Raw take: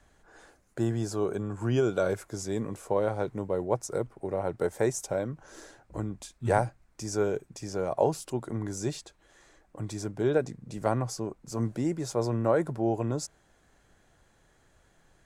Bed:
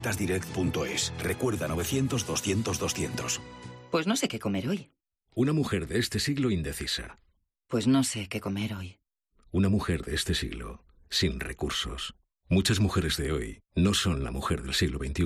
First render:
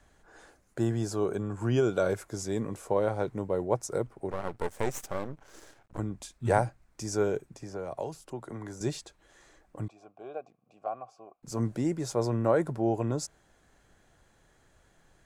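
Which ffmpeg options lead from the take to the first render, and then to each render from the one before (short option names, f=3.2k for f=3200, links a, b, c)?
-filter_complex "[0:a]asettb=1/sr,asplit=3[a][b][c];[a]atrim=end=4.304[d];[b]atrim=start=4.3:end=5.99,asetpts=PTS-STARTPTS,afade=t=in:d=0.004:c=qsin,afade=t=out:st=1.686:d=0.004:c=qsin,aeval=exprs='max(val(0),0)':c=same[e];[c]atrim=start=5.986[f];[d][e]acrossfade=d=0.004:c1=hsin:c2=qsin[g];[g][f]acrossfade=d=0.004:c1=qsin:c2=hsin,asettb=1/sr,asplit=3[h][i][j];[h]atrim=end=7.414[k];[i]atrim=start=7.41:end=8.81,asetpts=PTS-STARTPTS,afade=t=in:d=0.004:c=qsin,afade=t=out:st=1.396:d=0.004:c=qsin,acrossover=split=87|480|1900[l][m][n][o];[l]acompressor=threshold=-55dB:ratio=3[p];[m]acompressor=threshold=-42dB:ratio=3[q];[n]acompressor=threshold=-40dB:ratio=3[r];[o]acompressor=threshold=-56dB:ratio=3[s];[p][q][r][s]amix=inputs=4:normalize=0[t];[j]atrim=start=8.806[u];[k][t]acrossfade=d=0.004:c1=hsin:c2=qsin[v];[v][u]acrossfade=d=0.004:c1=qsin:c2=hsin,asettb=1/sr,asplit=3[w][x][y];[w]atrim=end=9.884[z];[x]atrim=start=9.88:end=11.43,asetpts=PTS-STARTPTS,afade=t=in:d=0.004:c=qsin,afade=t=out:st=1.546:d=0.004:c=qsin,asplit=3[aa][ab][ac];[aa]bandpass=f=730:t=q:w=8,volume=0dB[ad];[ab]bandpass=f=1.09k:t=q:w=8,volume=-6dB[ae];[ac]bandpass=f=2.44k:t=q:w=8,volume=-9dB[af];[ad][ae][af]amix=inputs=3:normalize=0[ag];[y]atrim=start=11.426[ah];[z][ag]acrossfade=d=0.004:c1=hsin:c2=qsin[ai];[ai][ah]acrossfade=d=0.004:c1=qsin:c2=hsin"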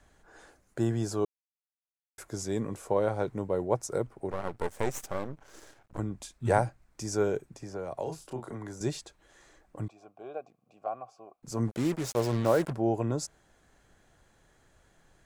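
-filter_complex "[0:a]asettb=1/sr,asplit=3[a][b][c];[a]atrim=end=8.034[d];[b]atrim=start=8.03:end=8.55,asetpts=PTS-STARTPTS,afade=t=in:d=0.004:c=qsin,afade=t=out:st=0.516:d=0.004:c=qsin,asplit=2[e][f];[f]adelay=31,volume=-4dB[g];[e][g]amix=inputs=2:normalize=0,atrim=end_sample=22932[h];[c]atrim=start=8.546[i];[d][h]acrossfade=d=0.004:c1=hsin:c2=qsin[j];[j][i]acrossfade=d=0.004:c1=qsin:c2=hsin,asplit=3[k][l][m];[k]afade=t=out:st=11.67:d=0.02[n];[l]acrusher=bits=5:mix=0:aa=0.5,afade=t=in:st=11.67:d=0.02,afade=t=out:st=12.72:d=0.02[o];[m]afade=t=in:st=12.72:d=0.02[p];[n][o][p]amix=inputs=3:normalize=0,asplit=3[q][r][s];[q]atrim=end=1.25,asetpts=PTS-STARTPTS,afade=t=out:st=1.246:d=0.004:c=hsin[t];[r]atrim=start=1.25:end=2.18,asetpts=PTS-STARTPTS,volume=0[u];[s]atrim=start=2.18,asetpts=PTS-STARTPTS,afade=t=in:d=0.004:c=hsin[v];[t][u][v]concat=n=3:v=0:a=1"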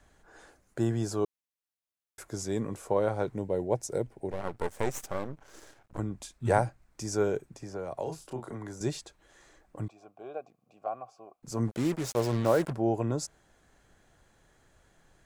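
-filter_complex "[0:a]asettb=1/sr,asplit=3[a][b][c];[a]atrim=end=3.364[d];[b]atrim=start=3.36:end=4.41,asetpts=PTS-STARTPTS,afade=t=in:d=0.004:c=qsin,afade=t=out:st=1.046:d=0.004:c=qsin,equalizer=f=1.2k:w=3.2:g=-13.5[e];[c]atrim=start=4.406[f];[d][e]acrossfade=d=0.004:c1=hsin:c2=qsin[g];[g][f]acrossfade=d=0.004:c1=qsin:c2=hsin"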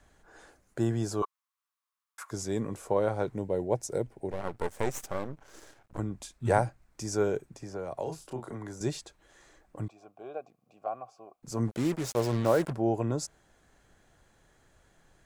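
-filter_complex "[0:a]asettb=1/sr,asplit=3[a][b][c];[a]atrim=end=1.224[d];[b]atrim=start=1.22:end=2.31,asetpts=PTS-STARTPTS,afade=t=in:d=0.004:c=qsin,afade=t=out:st=1.086:d=0.004:c=qsin,highpass=f=1.1k:t=q:w=5.8[e];[c]atrim=start=2.306[f];[d][e]acrossfade=d=0.004:c1=hsin:c2=qsin[g];[g][f]acrossfade=d=0.004:c1=qsin:c2=hsin"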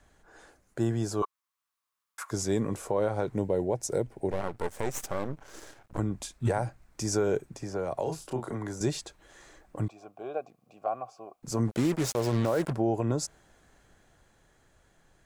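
-af "dynaudnorm=f=110:g=31:m=5dB,alimiter=limit=-17.5dB:level=0:latency=1:release=151"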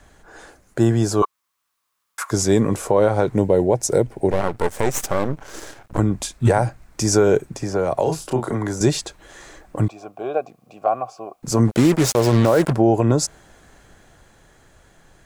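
-af "volume=11.5dB"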